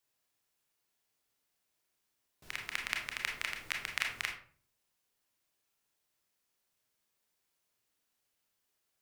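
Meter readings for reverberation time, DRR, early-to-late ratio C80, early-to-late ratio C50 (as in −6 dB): 0.45 s, 1.0 dB, 11.5 dB, 6.0 dB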